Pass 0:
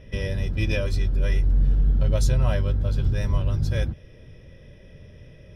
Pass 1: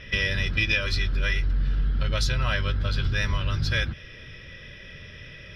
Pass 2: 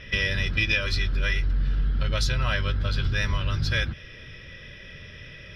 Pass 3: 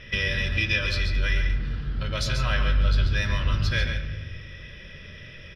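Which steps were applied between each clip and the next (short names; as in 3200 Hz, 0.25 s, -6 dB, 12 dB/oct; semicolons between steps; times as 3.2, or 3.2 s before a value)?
band shelf 2500 Hz +15.5 dB 2.5 oct; compressor 4:1, threshold -21 dBFS, peak gain reduction 8.5 dB
nothing audible
echo 0.138 s -7 dB; on a send at -7.5 dB: reverb RT60 1.3 s, pre-delay 8 ms; on the sum: gain -1.5 dB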